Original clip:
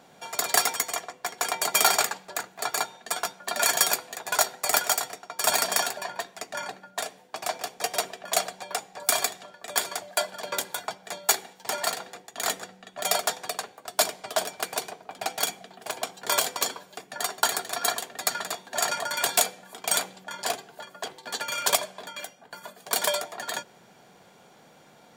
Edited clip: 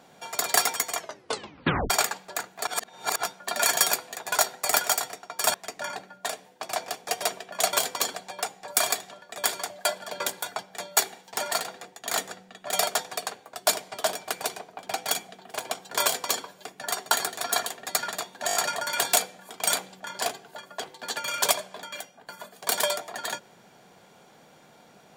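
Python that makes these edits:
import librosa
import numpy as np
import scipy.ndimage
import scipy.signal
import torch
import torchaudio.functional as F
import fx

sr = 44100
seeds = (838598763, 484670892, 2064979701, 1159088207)

y = fx.edit(x, sr, fx.tape_stop(start_s=0.98, length_s=0.92),
    fx.reverse_span(start_s=2.67, length_s=0.56),
    fx.cut(start_s=5.54, length_s=0.73),
    fx.duplicate(start_s=16.34, length_s=0.41, to_s=8.46),
    fx.stutter(start_s=18.79, slice_s=0.02, count=5), tone=tone)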